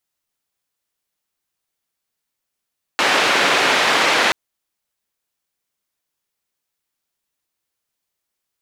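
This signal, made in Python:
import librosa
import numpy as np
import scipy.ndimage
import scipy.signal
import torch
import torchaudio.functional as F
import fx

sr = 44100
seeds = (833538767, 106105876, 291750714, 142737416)

y = fx.band_noise(sr, seeds[0], length_s=1.33, low_hz=320.0, high_hz=2600.0, level_db=-16.0)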